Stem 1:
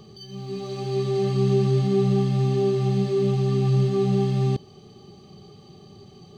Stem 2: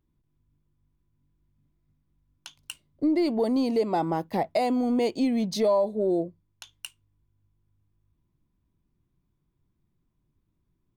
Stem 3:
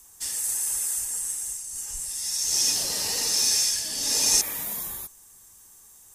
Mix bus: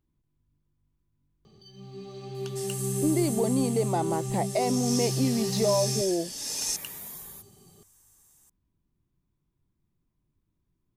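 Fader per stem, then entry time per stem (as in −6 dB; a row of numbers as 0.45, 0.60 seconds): −10.0, −2.5, −9.5 decibels; 1.45, 0.00, 2.35 seconds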